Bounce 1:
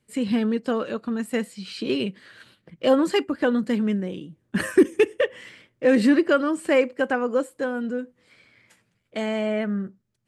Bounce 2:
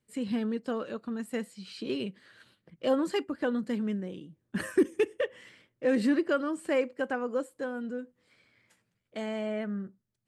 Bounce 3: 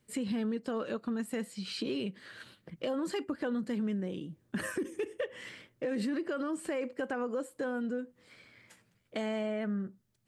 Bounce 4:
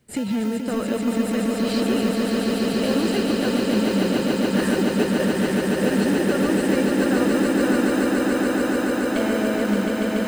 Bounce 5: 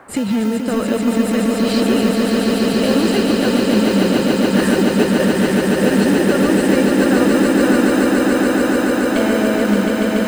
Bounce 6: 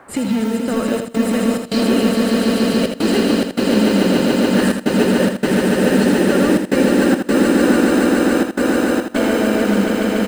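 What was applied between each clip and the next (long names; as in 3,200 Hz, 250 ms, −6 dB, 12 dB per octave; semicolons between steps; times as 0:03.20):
parametric band 2,400 Hz −2 dB; level −8 dB
brickwall limiter −27 dBFS, peak gain reduction 12 dB; downward compressor 2 to 1, threshold −44 dBFS, peak gain reduction 8 dB; level +7.5 dB
in parallel at −7.5 dB: decimation without filtering 39×; on the sum: echo that builds up and dies away 143 ms, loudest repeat 8, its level −4.5 dB; level +6.5 dB
noise in a band 240–1,600 Hz −50 dBFS; level +6 dB
gate pattern "xxxxxxx.xxx.x" 105 BPM −24 dB; on a send: repeating echo 80 ms, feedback 15%, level −6.5 dB; on the sum: level −1 dB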